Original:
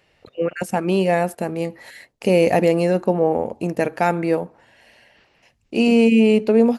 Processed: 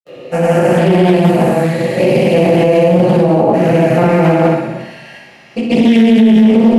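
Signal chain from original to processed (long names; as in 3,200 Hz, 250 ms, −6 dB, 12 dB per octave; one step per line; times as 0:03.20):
spectrum averaged block by block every 400 ms
high-pass filter 120 Hz 24 dB per octave
in parallel at −1 dB: downward compressor, threshold −31 dBFS, peak gain reduction 17 dB
on the sum: granular cloud 100 ms, grains 20 per second, pitch spread up and down by 0 semitones
on a send: feedback echo with a high-pass in the loop 63 ms, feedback 75%, high-pass 630 Hz, level −7 dB
on the sum: rectangular room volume 500 cubic metres, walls furnished, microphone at 6.4 metres
boost into a limiter +5.5 dB
highs frequency-modulated by the lows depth 0.28 ms
level −1 dB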